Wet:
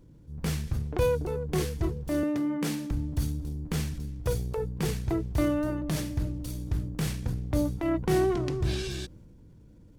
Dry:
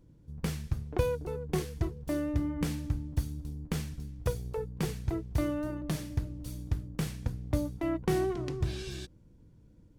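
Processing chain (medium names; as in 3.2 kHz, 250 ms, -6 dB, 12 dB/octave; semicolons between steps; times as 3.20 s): 2.23–2.91 s: high-pass 180 Hz 24 dB/octave; transient shaper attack -5 dB, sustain +4 dB; trim +5 dB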